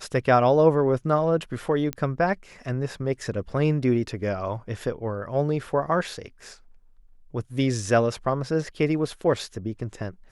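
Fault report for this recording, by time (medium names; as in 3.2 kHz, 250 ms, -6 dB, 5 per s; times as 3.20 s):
1.93 s: pop -14 dBFS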